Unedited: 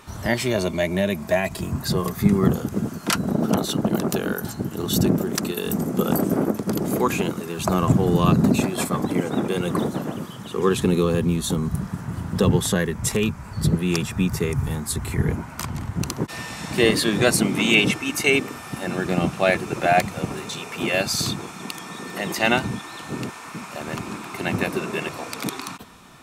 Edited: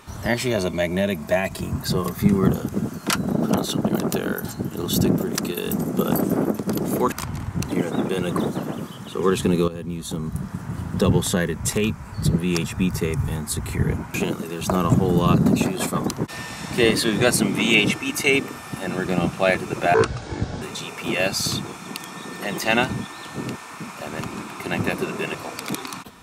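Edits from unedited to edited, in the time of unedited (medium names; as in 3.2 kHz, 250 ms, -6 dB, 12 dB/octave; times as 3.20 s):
7.12–9.08 s: swap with 15.53–16.10 s
11.07–12.09 s: fade in, from -14 dB
19.94–20.36 s: speed 62%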